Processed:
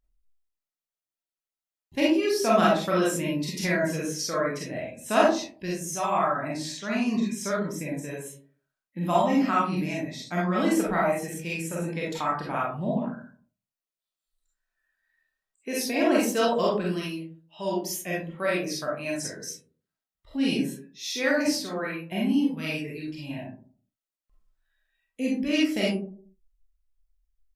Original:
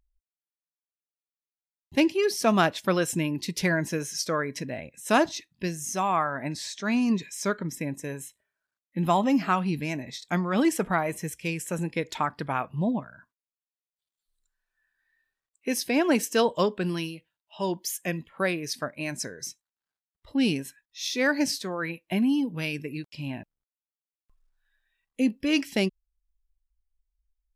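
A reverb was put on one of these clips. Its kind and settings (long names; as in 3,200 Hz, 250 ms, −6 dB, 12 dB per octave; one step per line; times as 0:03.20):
comb and all-pass reverb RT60 0.47 s, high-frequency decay 0.35×, pre-delay 5 ms, DRR −5.5 dB
level −6 dB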